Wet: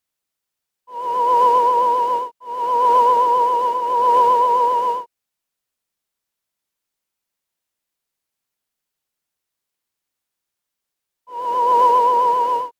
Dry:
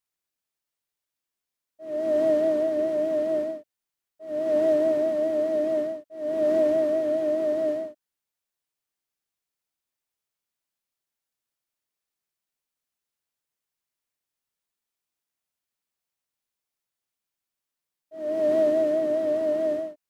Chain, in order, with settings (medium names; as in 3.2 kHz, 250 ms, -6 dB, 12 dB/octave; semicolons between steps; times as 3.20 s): wide varispeed 1.57×; reverse echo 268 ms -5.5 dB; trim +6 dB